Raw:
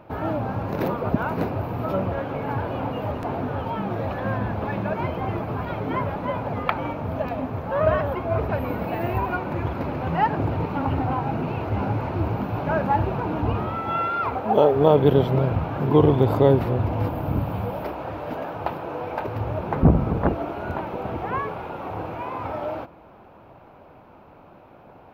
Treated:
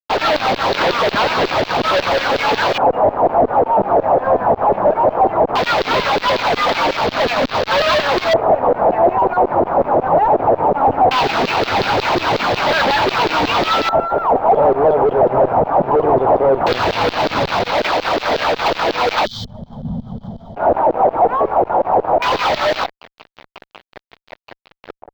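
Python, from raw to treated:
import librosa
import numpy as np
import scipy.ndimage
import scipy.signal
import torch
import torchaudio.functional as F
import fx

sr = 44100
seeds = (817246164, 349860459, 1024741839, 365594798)

y = fx.filter_lfo_bandpass(x, sr, shape='saw_down', hz=5.5, low_hz=390.0, high_hz=4400.0, q=2.8)
y = fx.fuzz(y, sr, gain_db=44.0, gate_db=-49.0)
y = fx.filter_lfo_lowpass(y, sr, shape='square', hz=0.18, low_hz=750.0, high_hz=4200.0, q=2.0)
y = fx.spec_box(y, sr, start_s=19.25, length_s=1.31, low_hz=240.0, high_hz=3000.0, gain_db=-27)
y = np.interp(np.arange(len(y)), np.arange(len(y))[::2], y[::2])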